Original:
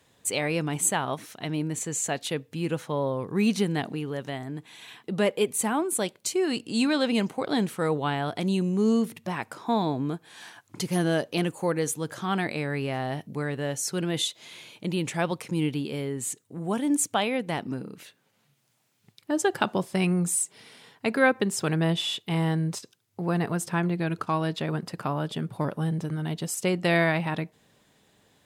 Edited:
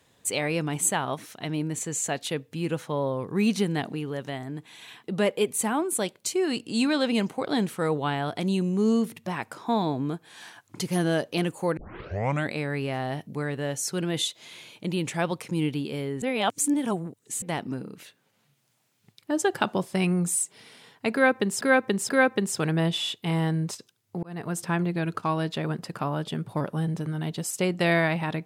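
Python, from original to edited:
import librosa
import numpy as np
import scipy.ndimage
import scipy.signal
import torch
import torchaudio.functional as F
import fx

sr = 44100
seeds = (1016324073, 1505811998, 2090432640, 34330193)

y = fx.edit(x, sr, fx.tape_start(start_s=11.77, length_s=0.75),
    fx.reverse_span(start_s=16.22, length_s=1.2),
    fx.repeat(start_s=21.13, length_s=0.48, count=3),
    fx.fade_in_span(start_s=23.27, length_s=0.37), tone=tone)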